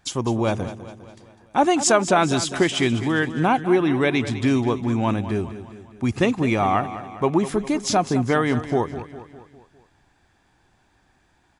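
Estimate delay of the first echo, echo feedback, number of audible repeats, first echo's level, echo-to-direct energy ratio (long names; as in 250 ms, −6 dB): 203 ms, 53%, 4, −13.0 dB, −11.5 dB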